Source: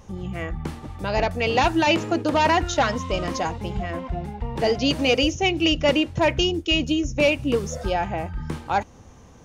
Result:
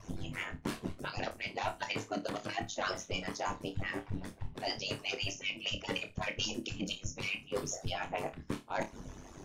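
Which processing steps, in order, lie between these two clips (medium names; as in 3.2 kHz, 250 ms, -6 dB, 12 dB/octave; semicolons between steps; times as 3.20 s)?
harmonic-percussive separation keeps percussive; reverse; compression 12:1, threshold -38 dBFS, peak gain reduction 21.5 dB; reverse; ring modulator 48 Hz; flutter echo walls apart 4.7 m, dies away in 0.21 s; trim +7 dB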